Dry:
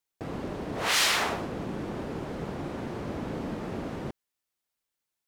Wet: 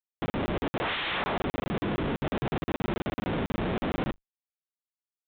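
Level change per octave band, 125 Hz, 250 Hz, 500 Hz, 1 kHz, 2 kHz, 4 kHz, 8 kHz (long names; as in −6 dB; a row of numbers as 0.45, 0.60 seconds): +4.0 dB, +3.5 dB, +2.5 dB, +1.0 dB, −2.0 dB, −6.0 dB, below −20 dB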